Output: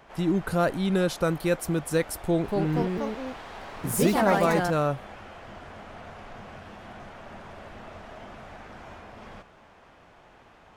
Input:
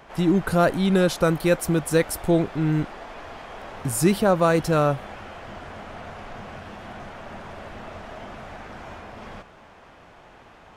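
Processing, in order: 2.19–4.88 s: ever faster or slower copies 252 ms, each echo +3 st, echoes 3; trim -5 dB

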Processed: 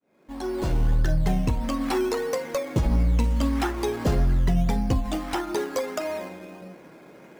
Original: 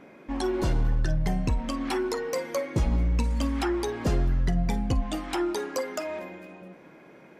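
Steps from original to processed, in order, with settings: fade-in on the opening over 0.95 s; hum notches 50/100/150/200/250/300/350 Hz; in parallel at -4.5 dB: decimation with a swept rate 12×, swing 60% 1.6 Hz; on the sum: endings held to a fixed fall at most 110 dB/s

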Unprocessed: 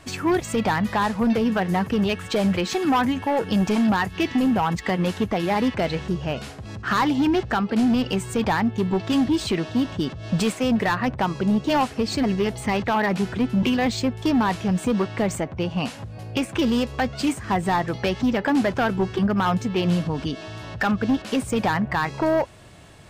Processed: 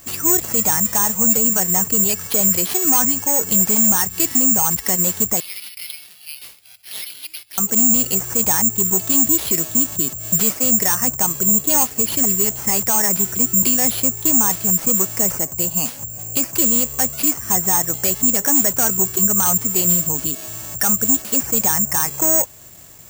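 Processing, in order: 5.40–7.58 s: elliptic high-pass 2.2 kHz, stop band 40 dB; careless resampling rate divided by 6×, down none, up zero stuff; trim -3 dB

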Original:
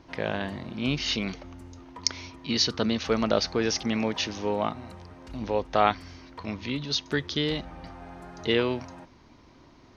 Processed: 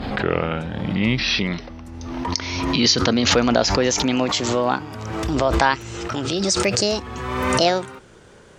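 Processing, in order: gliding tape speed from 77% -> 155%; loudness maximiser +8.5 dB; swell ahead of each attack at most 32 dB/s; trim -2 dB

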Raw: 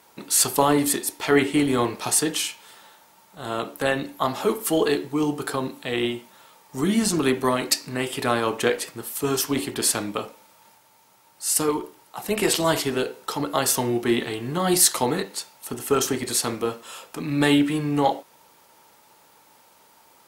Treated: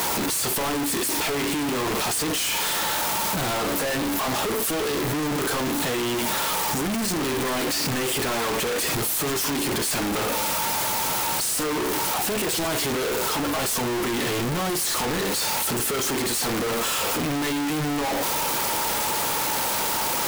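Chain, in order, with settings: one-bit comparator

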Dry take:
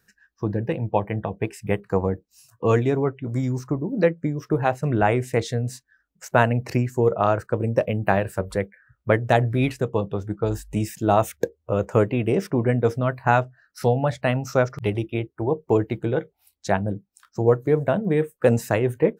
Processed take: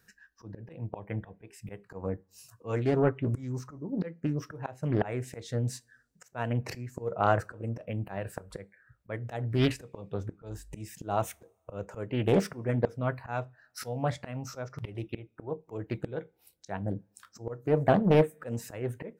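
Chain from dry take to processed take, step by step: slow attack 486 ms; two-slope reverb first 0.23 s, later 1.6 s, from -27 dB, DRR 16 dB; loudspeaker Doppler distortion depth 0.62 ms

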